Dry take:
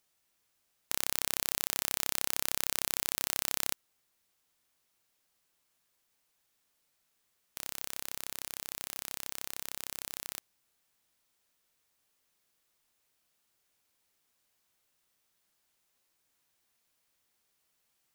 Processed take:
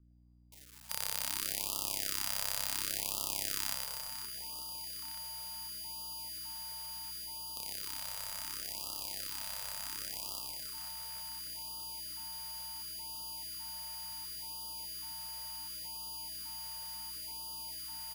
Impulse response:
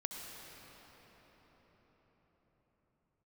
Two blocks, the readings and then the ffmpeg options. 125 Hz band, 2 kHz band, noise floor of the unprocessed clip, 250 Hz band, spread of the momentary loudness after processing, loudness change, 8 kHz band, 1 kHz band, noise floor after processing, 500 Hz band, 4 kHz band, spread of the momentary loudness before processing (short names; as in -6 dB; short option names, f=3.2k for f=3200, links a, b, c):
0.0 dB, -3.5 dB, -77 dBFS, -3.0 dB, 7 LU, -4.5 dB, -1.5 dB, 0.0 dB, -48 dBFS, -4.0 dB, +2.5 dB, 9 LU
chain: -filter_complex "[0:a]aeval=exprs='val(0)+0.00708*sin(2*PI*4800*n/s)':c=same,aecho=1:1:110|275|522.5|893.8|1451:0.631|0.398|0.251|0.158|0.1,aeval=exprs='val(0)+0.00158*(sin(2*PI*60*n/s)+sin(2*PI*2*60*n/s)/2+sin(2*PI*3*60*n/s)/3+sin(2*PI*4*60*n/s)/4+sin(2*PI*5*60*n/s)/5)':c=same,acrossover=split=420|1100[a][b][c];[c]acrusher=bits=5:mix=0:aa=0.000001[d];[a][b][d]amix=inputs=3:normalize=0,afftfilt=real='re*(1-between(b*sr/1024,280*pow(1900/280,0.5+0.5*sin(2*PI*0.7*pts/sr))/1.41,280*pow(1900/280,0.5+0.5*sin(2*PI*0.7*pts/sr))*1.41))':imag='im*(1-between(b*sr/1024,280*pow(1900/280,0.5+0.5*sin(2*PI*0.7*pts/sr))/1.41,280*pow(1900/280,0.5+0.5*sin(2*PI*0.7*pts/sr))*1.41))':win_size=1024:overlap=0.75,volume=-5.5dB"